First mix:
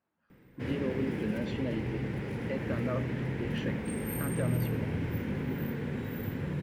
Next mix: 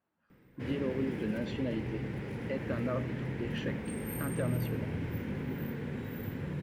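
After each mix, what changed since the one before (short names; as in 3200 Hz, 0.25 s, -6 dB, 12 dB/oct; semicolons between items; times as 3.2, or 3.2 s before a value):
background -3.0 dB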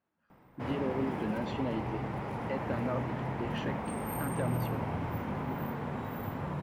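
background: add band shelf 890 Hz +13.5 dB 1.3 oct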